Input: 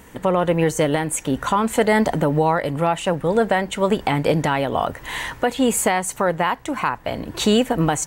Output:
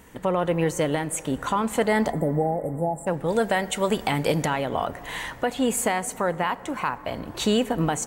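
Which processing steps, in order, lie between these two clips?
2.12–3.07 spectral delete 860–7200 Hz; 3.28–4.46 high shelf 3600 Hz +9.5 dB; 6.53–7.19 companded quantiser 8-bit; plate-style reverb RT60 4.2 s, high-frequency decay 0.3×, DRR 16.5 dB; gain -5 dB

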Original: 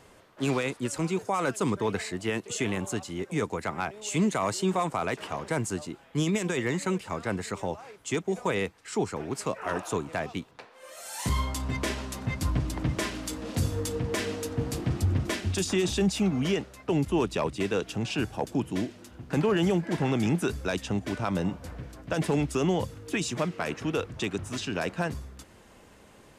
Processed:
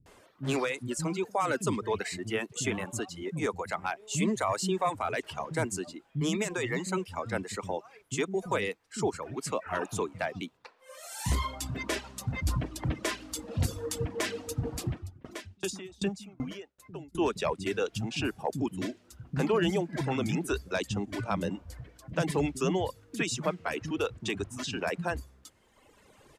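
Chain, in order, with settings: reverb removal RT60 1.6 s; bands offset in time lows, highs 60 ms, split 210 Hz; 14.86–17.15 dB-ramp tremolo decaying 2.6 Hz, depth 29 dB

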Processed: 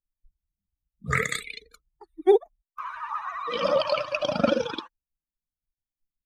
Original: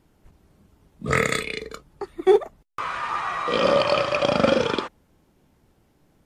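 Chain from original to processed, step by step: per-bin expansion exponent 2; vibrato 14 Hz 79 cents

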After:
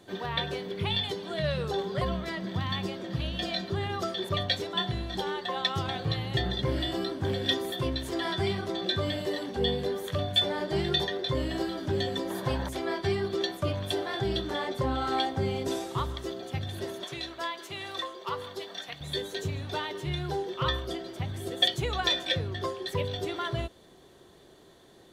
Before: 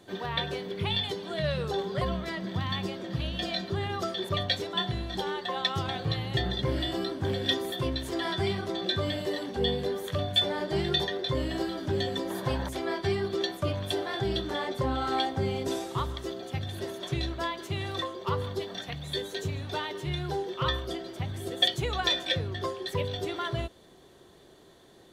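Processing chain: 17.04–19.01 HPF 660 Hz 6 dB/oct

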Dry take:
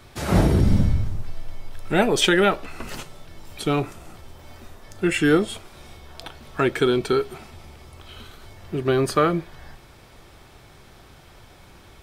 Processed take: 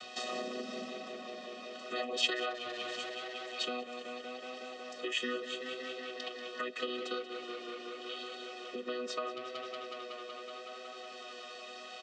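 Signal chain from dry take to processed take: chord vocoder major triad, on B3; bell 1400 Hz +8 dB 2.1 oct; comb 1.6 ms, depth 95%; tape echo 0.186 s, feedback 85%, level -10 dB, low-pass 5800 Hz; compressor 2.5:1, threshold -46 dBFS, peak gain reduction 22.5 dB; resonant high shelf 2300 Hz +12 dB, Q 1.5; gain +1 dB

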